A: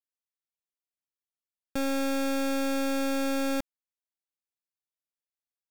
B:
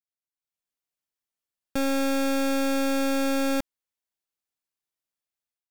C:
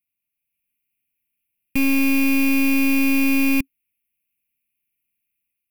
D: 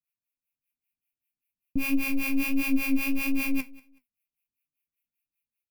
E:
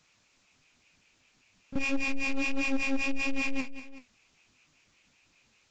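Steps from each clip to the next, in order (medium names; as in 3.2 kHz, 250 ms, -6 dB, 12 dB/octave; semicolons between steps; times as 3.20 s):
level rider gain up to 11 dB; trim -7.5 dB
FFT filter 270 Hz 0 dB, 680 Hz -29 dB, 1 kHz -24 dB, 1.5 kHz -21 dB, 2.5 kHz +9 dB, 4.3 kHz -29 dB, 7.5 kHz -25 dB, 11 kHz +4 dB; in parallel at -11.5 dB: integer overflow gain 26.5 dB; on the sum: trim +8.5 dB
harmonic tremolo 5.1 Hz, depth 100%, crossover 510 Hz; flange 1.5 Hz, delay 6 ms, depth 6.4 ms, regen +50%; feedback delay 189 ms, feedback 23%, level -21.5 dB
power-law waveshaper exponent 0.5; resampled via 16 kHz; pre-echo 31 ms -12.5 dB; trim -7 dB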